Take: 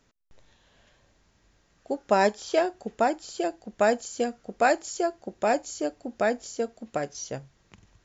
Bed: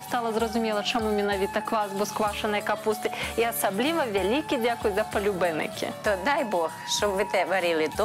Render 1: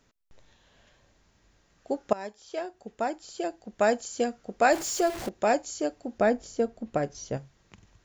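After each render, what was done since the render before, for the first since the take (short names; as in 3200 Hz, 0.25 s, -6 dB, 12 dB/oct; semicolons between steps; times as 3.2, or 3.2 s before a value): 2.13–4.16 fade in, from -20 dB; 4.72–5.29 zero-crossing step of -31.5 dBFS; 6.18–7.37 tilt -2 dB/oct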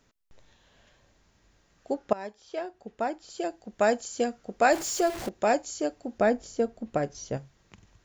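1.94–3.3 air absorption 74 m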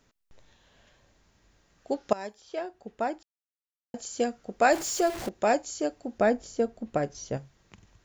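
1.91–2.4 bell 3300 Hz -> 14000 Hz +9.5 dB 1.6 oct; 3.23–3.94 mute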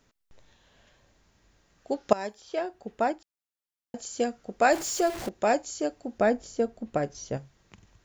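2.09–3.12 gain +3.5 dB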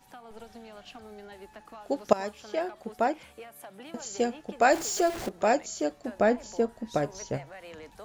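add bed -21 dB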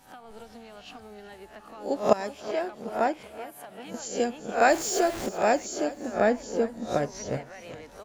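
spectral swells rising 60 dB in 0.33 s; feedback echo 0.382 s, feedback 44%, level -16.5 dB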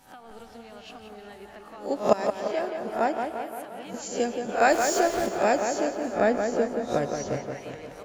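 tape echo 0.175 s, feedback 63%, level -5 dB, low-pass 3200 Hz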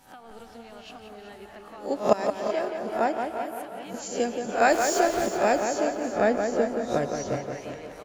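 echo 0.379 s -12 dB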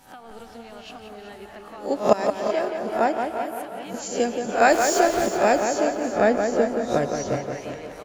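gain +3.5 dB; limiter -2 dBFS, peak gain reduction 1 dB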